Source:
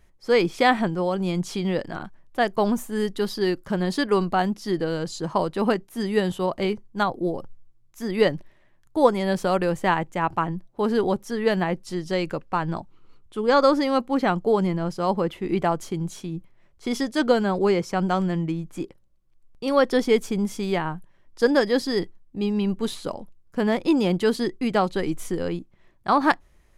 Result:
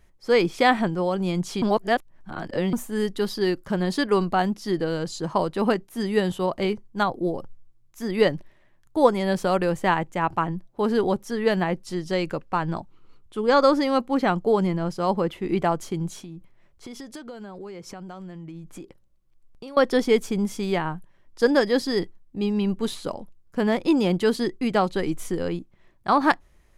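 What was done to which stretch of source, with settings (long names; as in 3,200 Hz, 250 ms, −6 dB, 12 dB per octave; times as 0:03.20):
0:01.62–0:02.73: reverse
0:16.21–0:19.77: downward compressor 10 to 1, threshold −35 dBFS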